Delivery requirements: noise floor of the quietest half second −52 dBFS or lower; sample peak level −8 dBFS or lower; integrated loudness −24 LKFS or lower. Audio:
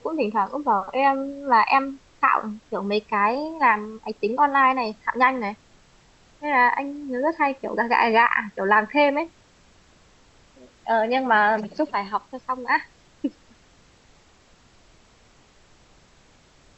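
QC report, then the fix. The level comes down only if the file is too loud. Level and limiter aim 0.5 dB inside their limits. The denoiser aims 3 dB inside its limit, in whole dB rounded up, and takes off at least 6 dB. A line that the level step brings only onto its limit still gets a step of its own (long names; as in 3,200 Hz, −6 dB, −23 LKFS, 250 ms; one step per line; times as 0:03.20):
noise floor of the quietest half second −56 dBFS: in spec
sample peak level −6.0 dBFS: out of spec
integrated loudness −22.0 LKFS: out of spec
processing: level −2.5 dB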